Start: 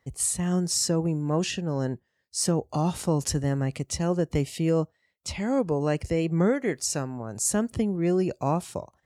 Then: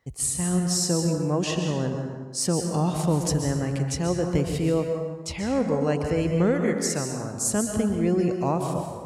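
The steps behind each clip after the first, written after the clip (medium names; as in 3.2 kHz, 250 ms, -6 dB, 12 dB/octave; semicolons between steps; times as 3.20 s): plate-style reverb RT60 1.4 s, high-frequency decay 0.6×, pre-delay 115 ms, DRR 3.5 dB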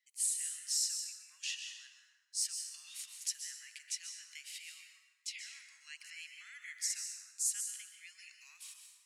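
steep high-pass 2 kHz 36 dB/octave; trim -7 dB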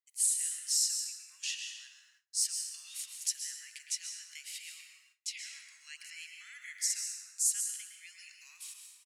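treble shelf 4.6 kHz +6 dB; speakerphone echo 110 ms, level -8 dB; gate with hold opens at -54 dBFS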